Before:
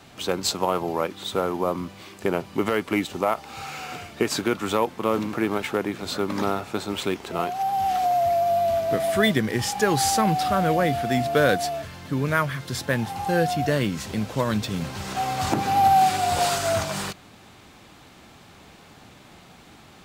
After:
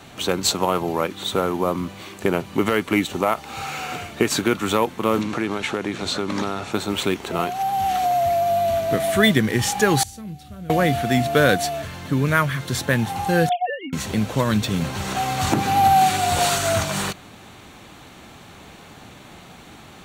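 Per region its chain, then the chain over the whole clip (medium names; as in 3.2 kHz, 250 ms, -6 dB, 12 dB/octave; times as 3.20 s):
5.21–6.72 s: low-pass 6 kHz + treble shelf 4.5 kHz +10 dB + compression 2:1, threshold -27 dBFS
10.03–10.70 s: amplifier tone stack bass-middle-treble 10-0-1 + doubling 28 ms -13 dB
13.49–13.93 s: formants replaced by sine waves + expander -22 dBFS + tilt shelf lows -4 dB, about 1.3 kHz
whole clip: band-stop 5 kHz, Q 8; dynamic bell 660 Hz, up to -4 dB, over -31 dBFS, Q 0.72; trim +5.5 dB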